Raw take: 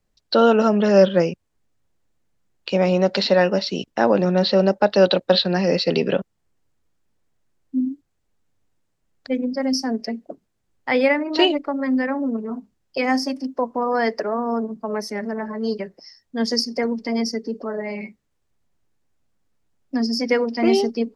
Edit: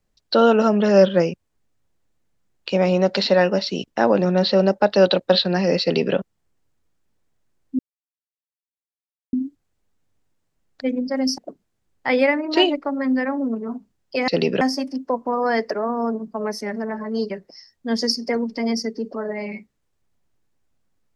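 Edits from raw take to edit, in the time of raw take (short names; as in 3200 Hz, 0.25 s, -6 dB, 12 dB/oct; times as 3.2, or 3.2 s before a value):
5.82–6.15 copy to 13.1
7.79 insert silence 1.54 s
9.84–10.2 cut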